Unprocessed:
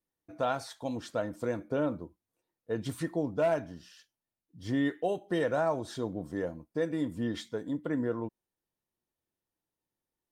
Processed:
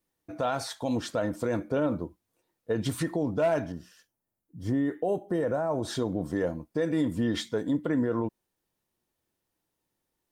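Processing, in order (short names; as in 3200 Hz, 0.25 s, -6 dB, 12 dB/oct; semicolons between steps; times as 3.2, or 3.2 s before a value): limiter -26.5 dBFS, peak gain reduction 8.5 dB; 3.72–5.83 bell 3600 Hz -14 dB 2.1 oct; gain +8 dB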